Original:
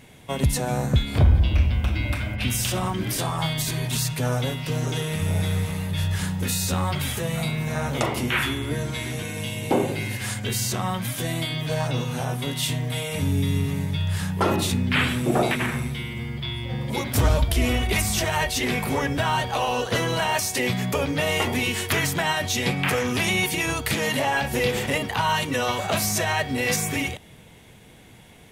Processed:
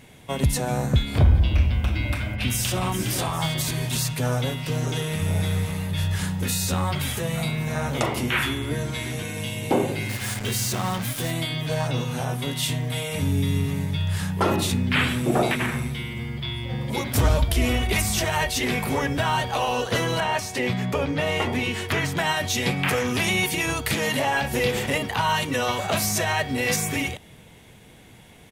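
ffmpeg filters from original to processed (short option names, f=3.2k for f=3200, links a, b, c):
-filter_complex "[0:a]asplit=2[a][b];[b]afade=t=in:st=2.32:d=0.01,afade=t=out:st=2.86:d=0.01,aecho=0:1:410|820|1230|1640|2050|2460|2870:0.398107|0.218959|0.120427|0.0662351|0.0364293|0.0200361|0.0110199[c];[a][c]amix=inputs=2:normalize=0,asettb=1/sr,asplit=3[d][e][f];[d]atrim=end=10.094[g];[e]atrim=start=10.09:end=11.31,asetpts=PTS-STARTPTS,afade=t=in:d=0.004:c=qsin,afade=t=out:st=1.216:d=0.004:c=qsin,acrusher=bits=4:mix=0:aa=0.5[h];[f]atrim=start=11.306[i];[g][h]acrossfade=d=0.004:c1=hsin:c2=qsin[j];[j][i]acrossfade=d=0.004:c1=qsin:c2=hsin,asettb=1/sr,asplit=3[k][l][m];[k]atrim=end=20.204[n];[l]atrim=start=20.2:end=22.17,asetpts=PTS-STARTPTS,afade=t=in:d=0.004:c=qsin,afade=t=out:st=1.966:d=0.004:c=qsin,lowpass=f=3.1k:p=1[o];[m]atrim=start=22.166[p];[n][o]acrossfade=d=0.004:c1=hsin:c2=qsin[q];[q][p]acrossfade=d=0.004:c1=qsin:c2=hsin"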